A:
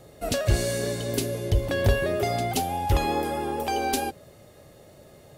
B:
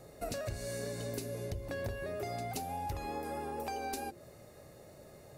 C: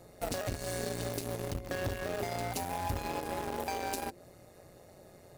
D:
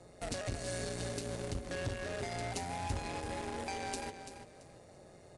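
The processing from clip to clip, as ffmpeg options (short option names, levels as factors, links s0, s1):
-af "acompressor=threshold=0.0251:ratio=6,equalizer=f=3200:w=5.9:g=-11.5,bandreject=f=50:t=h:w=6,bandreject=f=100:t=h:w=6,bandreject=f=150:t=h:w=6,bandreject=f=200:t=h:w=6,bandreject=f=250:t=h:w=6,bandreject=f=300:t=h:w=6,bandreject=f=350:t=h:w=6,volume=0.668"
-filter_complex "[0:a]asplit=2[s0][s1];[s1]acrusher=bits=5:mix=0:aa=0.000001,volume=0.562[s2];[s0][s2]amix=inputs=2:normalize=0,tremolo=f=180:d=0.75,volume=1.33"
-filter_complex "[0:a]acrossover=split=220|1600[s0][s1][s2];[s1]asoftclip=type=tanh:threshold=0.0168[s3];[s0][s3][s2]amix=inputs=3:normalize=0,aecho=1:1:337|674|1011:0.316|0.0791|0.0198,aresample=22050,aresample=44100,volume=0.841"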